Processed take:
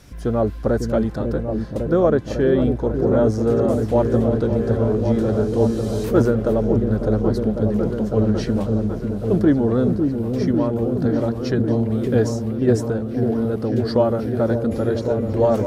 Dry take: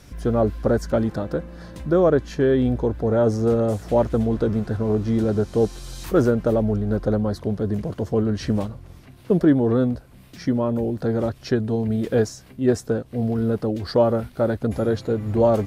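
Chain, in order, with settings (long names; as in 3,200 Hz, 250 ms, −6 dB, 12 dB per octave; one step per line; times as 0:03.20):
echo whose low-pass opens from repeat to repeat 550 ms, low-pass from 400 Hz, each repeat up 1 octave, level −3 dB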